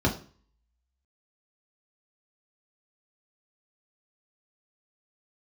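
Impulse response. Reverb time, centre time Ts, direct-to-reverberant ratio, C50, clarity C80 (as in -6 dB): 0.40 s, 21 ms, -2.5 dB, 11.5 dB, 16.0 dB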